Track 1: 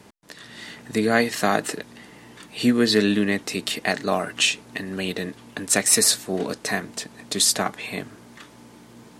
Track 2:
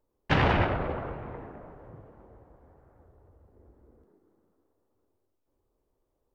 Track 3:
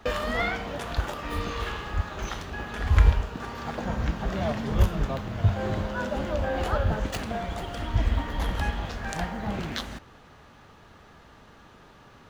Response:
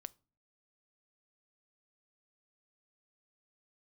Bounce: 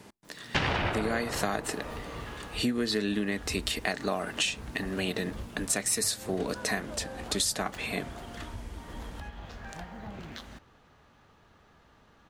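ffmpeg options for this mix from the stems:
-filter_complex "[0:a]volume=-3dB,asplit=2[a][b];[b]volume=-11.5dB[c];[1:a]crystalizer=i=5:c=0,adelay=250,volume=3dB[d];[2:a]acompressor=threshold=-29dB:ratio=6,adelay=600,volume=-8.5dB[e];[3:a]atrim=start_sample=2205[f];[c][f]afir=irnorm=-1:irlink=0[g];[a][d][e][g]amix=inputs=4:normalize=0,acompressor=threshold=-26dB:ratio=5"

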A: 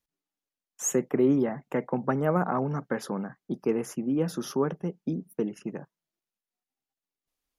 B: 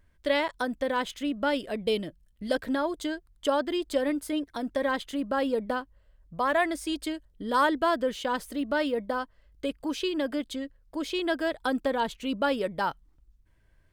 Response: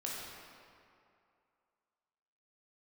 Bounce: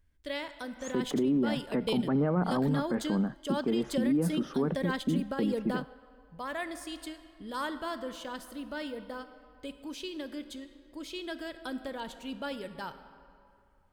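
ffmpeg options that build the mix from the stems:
-filter_complex "[0:a]lowpass=2.7k,equalizer=f=230:t=o:w=1.1:g=8.5,volume=-1.5dB,asplit=2[a][b];[1:a]equalizer=f=750:w=0.38:g=-7.5,volume=0dB,asplit=2[c][d];[d]volume=-16dB[e];[b]apad=whole_len=614030[f];[c][f]sidechaingate=range=-7dB:threshold=-44dB:ratio=16:detection=peak[g];[2:a]atrim=start_sample=2205[h];[e][h]afir=irnorm=-1:irlink=0[i];[a][g][i]amix=inputs=3:normalize=0,alimiter=limit=-20.5dB:level=0:latency=1:release=39"

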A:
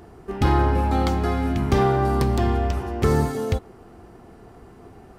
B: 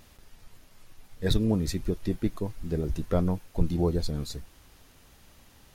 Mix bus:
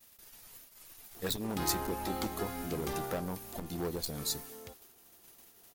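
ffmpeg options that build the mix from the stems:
-filter_complex "[0:a]adelay=1150,volume=-8.5dB,afade=t=out:st=2.79:d=0.54:silence=0.237137[a];[1:a]agate=range=-33dB:threshold=-47dB:ratio=3:detection=peak,acompressor=threshold=-26dB:ratio=3,volume=26.5dB,asoftclip=hard,volume=-26.5dB,volume=-0.5dB,asplit=2[b][c];[c]apad=whole_len=279561[d];[a][d]sidechaincompress=threshold=-34dB:ratio=8:attack=16:release=710[e];[e][b]amix=inputs=2:normalize=0,aemphasis=mode=production:type=bsi"

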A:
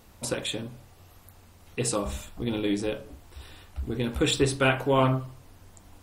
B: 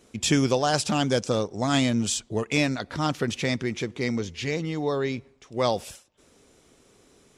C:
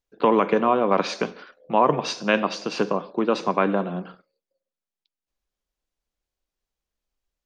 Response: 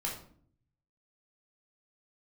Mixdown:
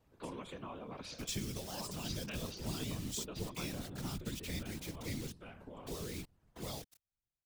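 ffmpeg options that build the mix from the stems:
-filter_complex "[0:a]aeval=exprs='if(lt(val(0),0),0.708*val(0),val(0))':c=same,highshelf=f=3.2k:g=-10.5,acompressor=threshold=-26dB:ratio=6,volume=-8dB,asplit=2[a][b];[b]volume=-3.5dB[c];[1:a]alimiter=limit=-15dB:level=0:latency=1:release=484,highshelf=f=4k:g=-6.5,acrusher=bits=5:mix=0:aa=0.000001,adelay=1050,volume=-2dB,asplit=3[d][e][f];[d]atrim=end=5.32,asetpts=PTS-STARTPTS,afade=t=out:st=5.316:d=0.004:c=hsin[g];[e]atrim=start=5.32:end=5.87,asetpts=PTS-STARTPTS,volume=0[h];[f]atrim=start=5.87,asetpts=PTS-STARTPTS,afade=t=in:d=0.004:c=hsin[i];[g][h][i]concat=n=3:v=0:a=1[j];[2:a]volume=-9dB[k];[c]aecho=0:1:808:1[l];[a][j][k][l]amix=inputs=4:normalize=0,acrossover=split=170|3000[m][n][o];[n]acompressor=threshold=-44dB:ratio=3[p];[m][p][o]amix=inputs=3:normalize=0,afftfilt=real='hypot(re,im)*cos(2*PI*random(0))':imag='hypot(re,im)*sin(2*PI*random(1))':win_size=512:overlap=0.75"

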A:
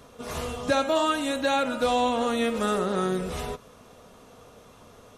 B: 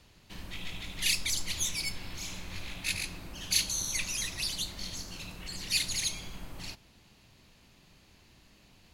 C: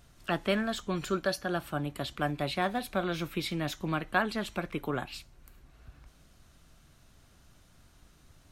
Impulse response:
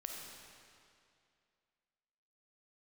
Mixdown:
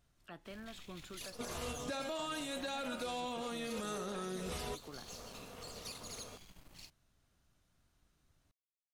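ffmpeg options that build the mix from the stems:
-filter_complex "[0:a]asoftclip=type=tanh:threshold=-15dB,adynamicequalizer=threshold=0.01:dfrequency=2100:dqfactor=0.7:tfrequency=2100:tqfactor=0.7:attack=5:release=100:ratio=0.375:range=3:mode=boostabove:tftype=highshelf,adelay=1200,volume=1dB[a];[1:a]acompressor=threshold=-37dB:ratio=6,adynamicequalizer=threshold=0.00224:dfrequency=3200:dqfactor=0.7:tfrequency=3200:tqfactor=0.7:attack=5:release=100:ratio=0.375:range=3:mode=boostabove:tftype=highshelf,adelay=150,volume=-11.5dB[b];[2:a]alimiter=limit=-24dB:level=0:latency=1:release=178,volume=-15dB,asplit=2[c][d];[d]apad=whole_len=281152[e];[a][e]sidechaincompress=threshold=-52dB:ratio=8:attack=10:release=238[f];[f][b]amix=inputs=2:normalize=0,aeval=exprs='sgn(val(0))*max(abs(val(0))-0.00112,0)':c=same,alimiter=level_in=3dB:limit=-24dB:level=0:latency=1:release=23,volume=-3dB,volume=0dB[g];[c][g]amix=inputs=2:normalize=0,acompressor=threshold=-41dB:ratio=2"

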